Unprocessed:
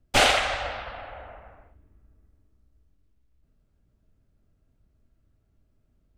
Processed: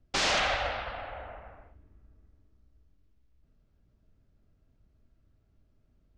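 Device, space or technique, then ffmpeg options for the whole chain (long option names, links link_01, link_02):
synthesiser wavefolder: -af "aeval=exprs='0.0891*(abs(mod(val(0)/0.0891+3,4)-2)-1)':channel_layout=same,lowpass=frequency=6300:width=0.5412,lowpass=frequency=6300:width=1.3066"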